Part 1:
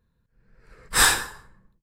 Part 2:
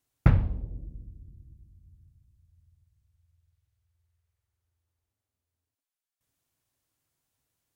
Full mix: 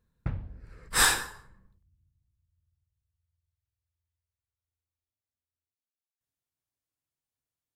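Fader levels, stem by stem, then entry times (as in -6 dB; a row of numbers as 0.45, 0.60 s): -4.5, -13.0 dB; 0.00, 0.00 s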